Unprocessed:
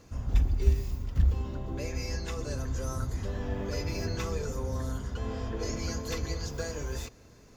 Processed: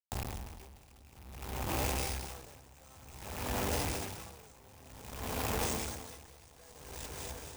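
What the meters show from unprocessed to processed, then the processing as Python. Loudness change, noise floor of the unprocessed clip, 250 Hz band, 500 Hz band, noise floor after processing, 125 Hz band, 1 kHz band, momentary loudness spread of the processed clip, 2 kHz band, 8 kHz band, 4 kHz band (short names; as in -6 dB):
-4.5 dB, -55 dBFS, -6.0 dB, -5.5 dB, -58 dBFS, -11.0 dB, +2.5 dB, 22 LU, -0.5 dB, +1.5 dB, -0.5 dB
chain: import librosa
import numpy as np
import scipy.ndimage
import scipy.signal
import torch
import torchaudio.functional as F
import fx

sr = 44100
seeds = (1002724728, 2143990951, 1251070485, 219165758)

y = fx.rattle_buzz(x, sr, strikes_db=-31.0, level_db=-30.0)
y = scipy.signal.sosfilt(scipy.signal.butter(4, 50.0, 'highpass', fs=sr, output='sos'), y)
y = fx.quant_dither(y, sr, seeds[0], bits=6, dither='none')
y = fx.notch(y, sr, hz=4400.0, q=5.1)
y = fx.echo_split(y, sr, split_hz=1000.0, low_ms=331, high_ms=251, feedback_pct=52, wet_db=-13.5)
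y = fx.tube_stage(y, sr, drive_db=38.0, bias=0.65)
y = fx.peak_eq(y, sr, hz=820.0, db=8.5, octaves=0.54)
y = np.repeat(y[::3], 3)[:len(y)]
y = fx.high_shelf(y, sr, hz=7000.0, db=9.5)
y = y + 10.0 ** (-8.5 / 20.0) * np.pad(y, (int(199 * sr / 1000.0), 0))[:len(y)]
y = y * 10.0 ** (-25 * (0.5 - 0.5 * np.cos(2.0 * np.pi * 0.54 * np.arange(len(y)) / sr)) / 20.0)
y = F.gain(torch.from_numpy(y), 6.0).numpy()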